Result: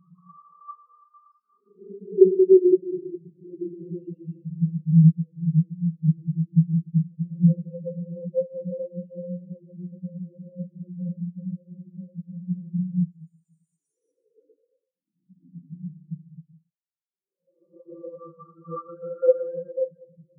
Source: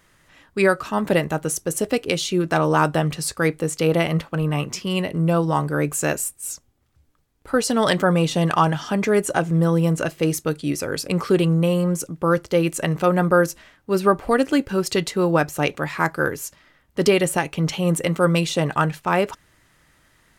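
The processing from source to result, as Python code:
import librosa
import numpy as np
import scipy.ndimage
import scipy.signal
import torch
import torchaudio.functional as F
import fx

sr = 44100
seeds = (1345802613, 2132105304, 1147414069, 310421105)

p1 = scipy.signal.sosfilt(scipy.signal.butter(2, 110.0, 'highpass', fs=sr, output='sos'), x)
p2 = fx.over_compress(p1, sr, threshold_db=-30.0, ratio=-1.0)
p3 = p1 + (p2 * 10.0 ** (1.5 / 20.0))
p4 = fx.paulstretch(p3, sr, seeds[0], factor=17.0, window_s=0.1, from_s=11.19)
p5 = fx.echo_feedback(p4, sr, ms=118, feedback_pct=41, wet_db=-9)
y = fx.spectral_expand(p5, sr, expansion=4.0)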